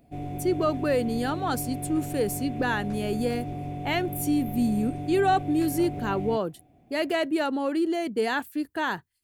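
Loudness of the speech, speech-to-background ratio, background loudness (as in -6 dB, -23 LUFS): -27.5 LUFS, 7.5 dB, -35.0 LUFS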